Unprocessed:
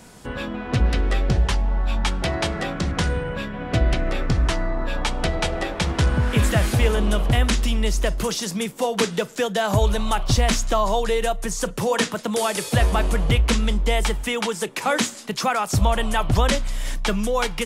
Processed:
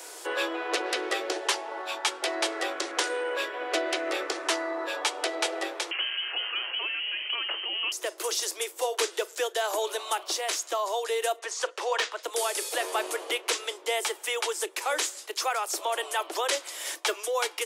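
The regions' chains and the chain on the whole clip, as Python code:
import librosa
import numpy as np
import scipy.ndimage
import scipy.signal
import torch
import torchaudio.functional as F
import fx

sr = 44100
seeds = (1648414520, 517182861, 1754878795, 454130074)

y = fx.chain(x, sr, fx.highpass(hz=120.0, slope=12),
    fx.freq_invert(carrier_hz=3100),
    fx.env_flatten(amount_pct=50), at=(5.91, 7.92))
y = fx.chain(y, sr, fx.bandpass_edges(low_hz=570.0, high_hz=4300.0),
    fx.clip_hard(threshold_db=-15.5), at=(11.39, 12.23))
y = scipy.signal.sosfilt(scipy.signal.butter(16, 320.0, 'highpass', fs=sr, output='sos'), y)
y = fx.high_shelf(y, sr, hz=4400.0, db=7.0)
y = fx.rider(y, sr, range_db=10, speed_s=0.5)
y = y * librosa.db_to_amplitude(-7.5)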